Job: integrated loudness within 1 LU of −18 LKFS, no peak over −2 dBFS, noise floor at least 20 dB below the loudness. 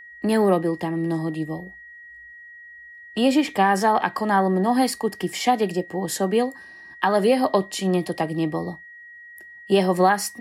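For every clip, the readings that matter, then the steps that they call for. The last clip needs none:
interfering tone 1,900 Hz; level of the tone −41 dBFS; integrated loudness −22.0 LKFS; sample peak −7.0 dBFS; target loudness −18.0 LKFS
→ notch filter 1,900 Hz, Q 30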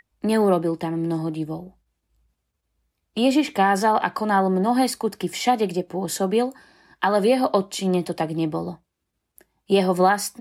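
interfering tone none found; integrated loudness −22.0 LKFS; sample peak −7.0 dBFS; target loudness −18.0 LKFS
→ level +4 dB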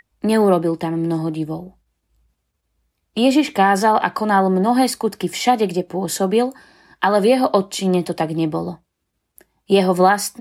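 integrated loudness −18.0 LKFS; sample peak −3.0 dBFS; background noise floor −75 dBFS

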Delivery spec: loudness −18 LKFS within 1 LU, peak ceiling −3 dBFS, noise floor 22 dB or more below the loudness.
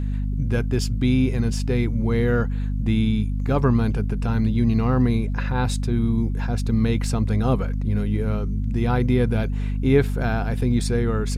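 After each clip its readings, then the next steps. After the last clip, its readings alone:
mains hum 50 Hz; hum harmonics up to 250 Hz; level of the hum −22 dBFS; integrated loudness −22.5 LKFS; sample peak −5.5 dBFS; target loudness −18.0 LKFS
→ hum removal 50 Hz, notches 5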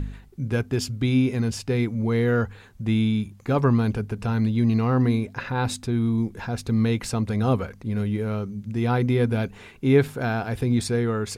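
mains hum none found; integrated loudness −24.0 LKFS; sample peak −7.0 dBFS; target loudness −18.0 LKFS
→ level +6 dB
brickwall limiter −3 dBFS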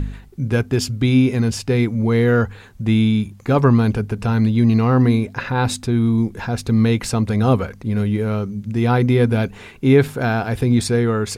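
integrated loudness −18.5 LKFS; sample peak −3.0 dBFS; background noise floor −42 dBFS

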